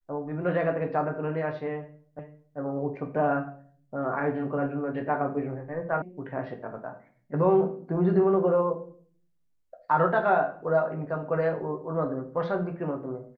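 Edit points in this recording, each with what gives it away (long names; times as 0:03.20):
0:02.19: the same again, the last 0.39 s
0:06.02: cut off before it has died away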